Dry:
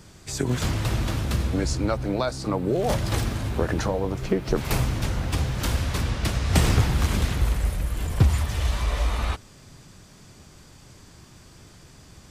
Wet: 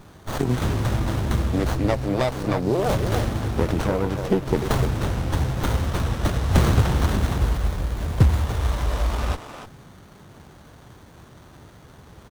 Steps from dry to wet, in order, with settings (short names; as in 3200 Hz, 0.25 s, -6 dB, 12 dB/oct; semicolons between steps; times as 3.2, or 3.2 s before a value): HPF 42 Hz; high shelf 3900 Hz +8 dB; speakerphone echo 0.3 s, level -7 dB; running maximum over 17 samples; gain +2.5 dB